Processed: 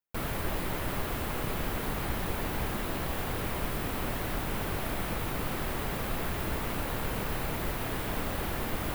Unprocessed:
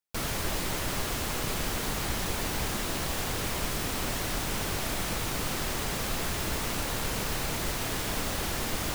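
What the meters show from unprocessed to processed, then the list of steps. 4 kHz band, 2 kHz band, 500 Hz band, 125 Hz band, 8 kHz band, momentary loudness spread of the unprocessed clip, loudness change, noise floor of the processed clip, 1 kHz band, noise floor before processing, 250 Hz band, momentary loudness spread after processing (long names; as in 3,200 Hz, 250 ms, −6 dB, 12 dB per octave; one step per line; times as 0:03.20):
−7.5 dB, −2.5 dB, 0.0 dB, 0.0 dB, −10.0 dB, 0 LU, −2.5 dB, −35 dBFS, −1.0 dB, −33 dBFS, 0.0 dB, 0 LU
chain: parametric band 6,200 Hz −13.5 dB 1.6 octaves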